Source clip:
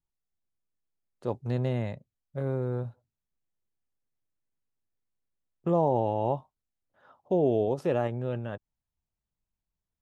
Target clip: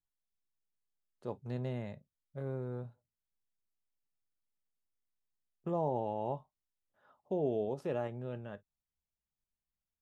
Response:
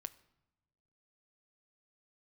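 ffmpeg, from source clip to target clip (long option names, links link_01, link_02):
-filter_complex "[1:a]atrim=start_sample=2205,atrim=end_sample=3528,asetrate=61740,aresample=44100[link_01];[0:a][link_01]afir=irnorm=-1:irlink=0,volume=-1.5dB"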